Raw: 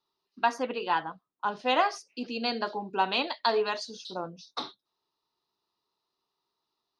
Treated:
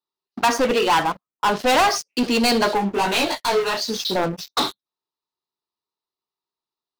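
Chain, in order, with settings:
leveller curve on the samples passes 5
0:02.77–0:03.87: micro pitch shift up and down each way 21 cents → 35 cents

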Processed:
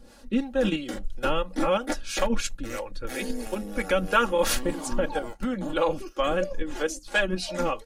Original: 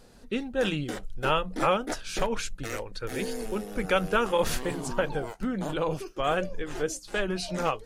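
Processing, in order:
comb filter 3.6 ms, depth 68%
in parallel at +1.5 dB: output level in coarse steps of 14 dB
on the sum: two-band tremolo in antiphase 3 Hz, depth 70%, crossover 420 Hz

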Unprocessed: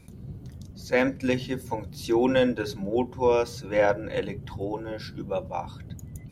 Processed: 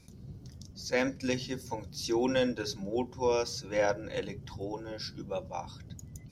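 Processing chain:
parametric band 5,400 Hz +13.5 dB 0.71 octaves
level −6.5 dB

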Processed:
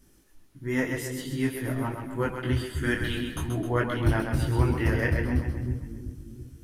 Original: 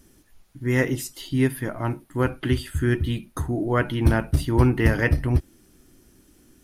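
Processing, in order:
0:02.82–0:03.39: ceiling on every frequency bin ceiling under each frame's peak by 14 dB
echo with a time of its own for lows and highs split 340 Hz, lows 351 ms, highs 131 ms, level −5.5 dB
micro pitch shift up and down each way 17 cents
level −1.5 dB

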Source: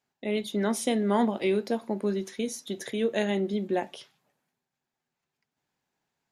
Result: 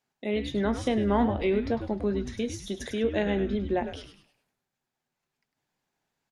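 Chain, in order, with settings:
echo with shifted repeats 102 ms, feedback 38%, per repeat −140 Hz, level −9 dB
treble cut that deepens with the level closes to 3,000 Hz, closed at −22.5 dBFS

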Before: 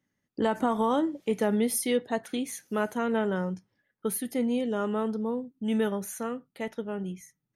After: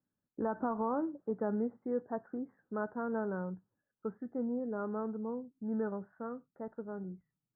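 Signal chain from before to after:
Butterworth low-pass 1,600 Hz 72 dB per octave
level −8 dB

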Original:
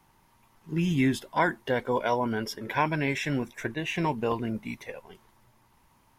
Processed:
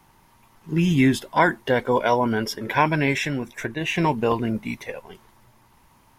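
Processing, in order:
0:03.26–0:03.81: downward compressor 2 to 1, threshold −33 dBFS, peak gain reduction 5.5 dB
level +6.5 dB

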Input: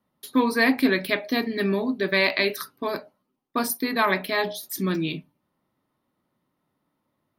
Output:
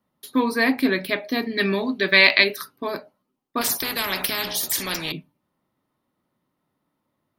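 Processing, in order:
0:01.57–0:02.44: parametric band 3,100 Hz +9.5 dB 2.6 octaves
0:03.61–0:05.12: every bin compressed towards the loudest bin 4 to 1

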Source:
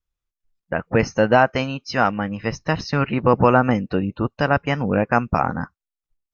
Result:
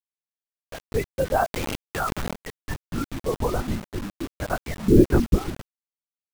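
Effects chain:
spectral dynamics exaggerated over time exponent 2
automatic gain control gain up to 3 dB
linear-prediction vocoder at 8 kHz whisper
0:04.88–0:05.55: low shelf with overshoot 530 Hz +13 dB, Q 3
low-pass filter 1,800 Hz 12 dB per octave
0:03.13–0:03.70: parametric band 800 Hz → 2,000 Hz −8 dB 1.4 octaves
bit reduction 5 bits
0:01.51–0:02.33: envelope flattener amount 70%
level −6.5 dB

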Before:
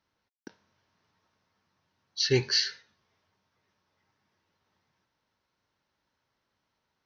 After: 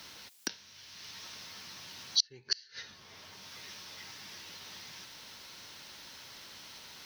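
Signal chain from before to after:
gate with flip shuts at −20 dBFS, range −40 dB
multiband upward and downward compressor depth 70%
level +15 dB

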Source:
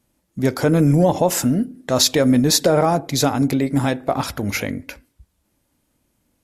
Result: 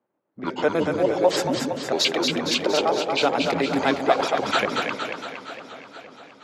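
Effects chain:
pitch shifter gated in a rhythm −8 semitones, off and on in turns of 62 ms
high-pass filter 170 Hz 12 dB per octave
three-way crossover with the lows and the highs turned down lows −16 dB, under 360 Hz, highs −17 dB, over 5,200 Hz
speech leveller within 5 dB 0.5 s
low-pass that shuts in the quiet parts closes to 1,000 Hz, open at −21.5 dBFS
on a send: echo with a time of its own for lows and highs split 490 Hz, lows 151 ms, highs 231 ms, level −4 dB
on the sum: feedback echo with a swinging delay time 471 ms, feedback 63%, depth 121 cents, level −15.5 dB

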